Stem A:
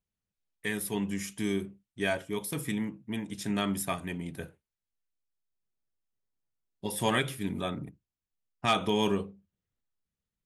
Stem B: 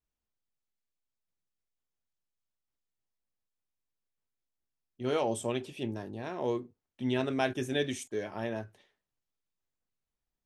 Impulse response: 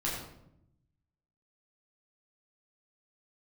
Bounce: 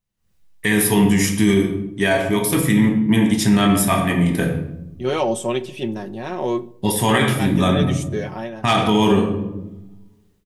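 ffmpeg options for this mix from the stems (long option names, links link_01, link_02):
-filter_complex "[0:a]volume=0dB,asplit=2[link_01][link_02];[link_02]volume=-4.5dB[link_03];[1:a]aecho=1:1:5.4:0.57,volume=-8dB,asplit=2[link_04][link_05];[link_05]volume=-22.5dB[link_06];[2:a]atrim=start_sample=2205[link_07];[link_03][link_06]amix=inputs=2:normalize=0[link_08];[link_08][link_07]afir=irnorm=-1:irlink=0[link_09];[link_01][link_04][link_09]amix=inputs=3:normalize=0,dynaudnorm=framelen=170:gausssize=3:maxgain=16.5dB,alimiter=limit=-6.5dB:level=0:latency=1:release=28"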